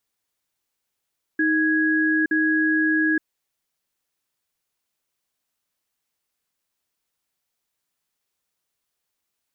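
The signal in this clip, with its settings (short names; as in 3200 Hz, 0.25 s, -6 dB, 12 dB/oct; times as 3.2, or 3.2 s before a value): cadence 314 Hz, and 1660 Hz, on 0.87 s, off 0.05 s, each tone -20 dBFS 1.84 s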